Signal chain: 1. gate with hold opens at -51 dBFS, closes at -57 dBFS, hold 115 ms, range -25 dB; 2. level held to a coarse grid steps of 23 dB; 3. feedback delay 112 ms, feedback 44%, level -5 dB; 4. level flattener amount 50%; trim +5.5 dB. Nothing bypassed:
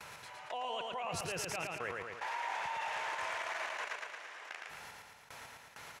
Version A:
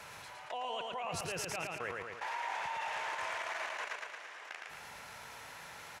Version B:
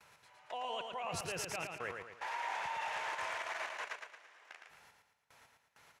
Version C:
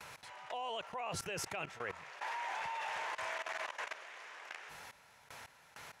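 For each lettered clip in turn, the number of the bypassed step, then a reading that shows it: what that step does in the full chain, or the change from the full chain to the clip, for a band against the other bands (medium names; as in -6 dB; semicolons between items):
1, momentary loudness spread change -3 LU; 4, momentary loudness spread change +4 LU; 3, loudness change -2.0 LU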